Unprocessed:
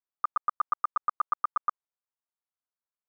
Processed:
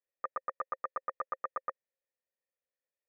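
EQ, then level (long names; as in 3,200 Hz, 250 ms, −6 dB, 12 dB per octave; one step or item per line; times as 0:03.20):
formant resonators in series e
+15.0 dB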